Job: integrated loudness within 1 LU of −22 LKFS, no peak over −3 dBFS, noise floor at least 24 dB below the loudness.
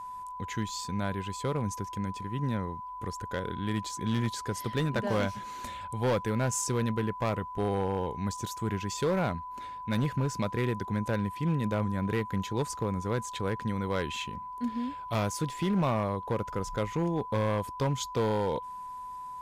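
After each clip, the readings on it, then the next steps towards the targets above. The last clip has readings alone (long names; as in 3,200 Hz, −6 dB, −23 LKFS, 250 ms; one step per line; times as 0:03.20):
share of clipped samples 1.7%; peaks flattened at −22.5 dBFS; interfering tone 1,000 Hz; level of the tone −38 dBFS; integrated loudness −32.0 LKFS; sample peak −22.5 dBFS; target loudness −22.0 LKFS
→ clipped peaks rebuilt −22.5 dBFS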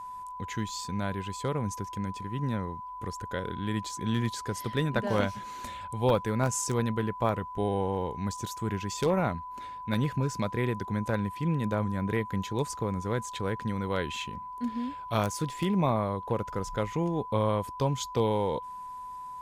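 share of clipped samples 0.0%; interfering tone 1,000 Hz; level of the tone −38 dBFS
→ notch filter 1,000 Hz, Q 30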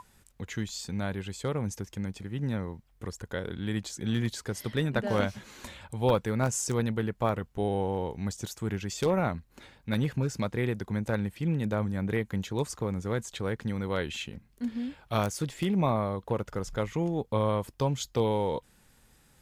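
interfering tone none found; integrated loudness −31.5 LKFS; sample peak −13.0 dBFS; target loudness −22.0 LKFS
→ level +9.5 dB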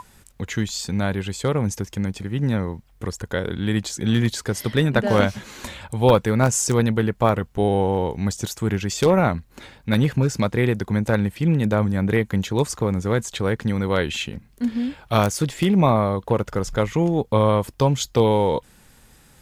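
integrated loudness −22.0 LKFS; sample peak −3.5 dBFS; background noise floor −53 dBFS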